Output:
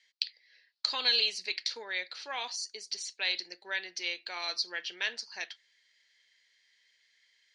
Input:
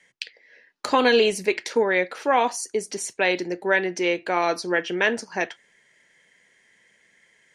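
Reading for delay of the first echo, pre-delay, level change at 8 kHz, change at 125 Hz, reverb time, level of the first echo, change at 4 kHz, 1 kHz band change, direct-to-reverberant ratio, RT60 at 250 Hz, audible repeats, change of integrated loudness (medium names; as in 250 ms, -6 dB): no echo, no reverb, -8.5 dB, under -30 dB, no reverb, no echo, +1.0 dB, -18.5 dB, no reverb, no reverb, no echo, -9.5 dB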